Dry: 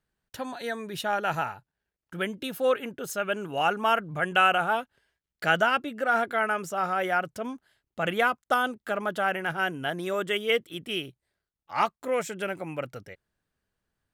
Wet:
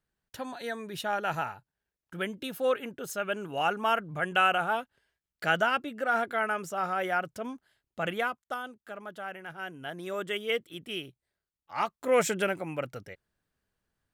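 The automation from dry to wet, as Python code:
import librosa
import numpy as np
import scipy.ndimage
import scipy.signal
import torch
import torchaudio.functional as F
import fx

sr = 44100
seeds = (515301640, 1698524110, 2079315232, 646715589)

y = fx.gain(x, sr, db=fx.line((8.02, -3.0), (8.63, -12.5), (9.52, -12.5), (10.19, -5.0), (11.85, -5.0), (12.27, 7.0), (12.62, -0.5)))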